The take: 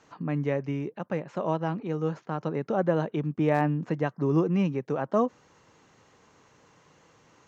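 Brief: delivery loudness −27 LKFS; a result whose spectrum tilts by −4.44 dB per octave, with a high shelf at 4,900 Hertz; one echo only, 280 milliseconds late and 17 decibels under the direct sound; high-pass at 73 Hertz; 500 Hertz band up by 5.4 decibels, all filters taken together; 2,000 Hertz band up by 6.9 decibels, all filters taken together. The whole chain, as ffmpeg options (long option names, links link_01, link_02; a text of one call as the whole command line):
ffmpeg -i in.wav -af "highpass=73,equalizer=frequency=500:width_type=o:gain=6,equalizer=frequency=2000:width_type=o:gain=7,highshelf=frequency=4900:gain=8,aecho=1:1:280:0.141,volume=-2dB" out.wav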